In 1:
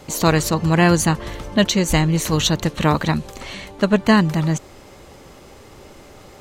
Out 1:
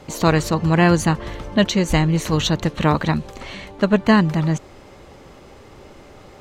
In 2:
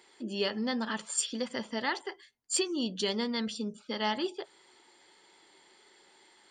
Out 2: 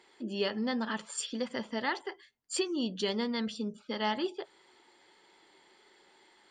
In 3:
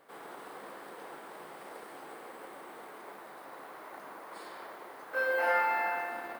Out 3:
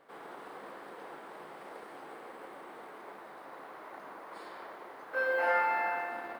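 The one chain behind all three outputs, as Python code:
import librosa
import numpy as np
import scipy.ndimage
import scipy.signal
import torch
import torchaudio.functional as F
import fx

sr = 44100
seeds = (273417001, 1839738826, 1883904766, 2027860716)

y = fx.high_shelf(x, sr, hz=6300.0, db=-11.0)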